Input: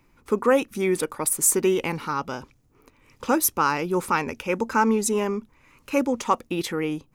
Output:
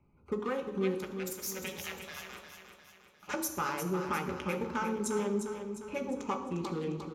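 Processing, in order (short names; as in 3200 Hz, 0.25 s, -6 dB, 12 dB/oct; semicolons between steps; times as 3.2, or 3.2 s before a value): Wiener smoothing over 25 samples; 0.94–3.34 spectral gate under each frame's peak -15 dB weak; compressor 3:1, threshold -28 dBFS, peak gain reduction 10.5 dB; feedback echo 0.353 s, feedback 48%, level -8 dB; reverb RT60 1.0 s, pre-delay 3 ms, DRR 3 dB; gain -8.5 dB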